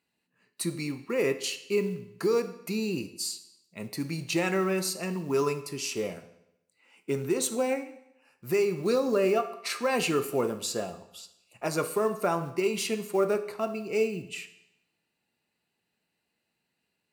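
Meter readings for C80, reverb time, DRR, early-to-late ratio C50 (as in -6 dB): 15.0 dB, 0.85 s, 9.5 dB, 13.0 dB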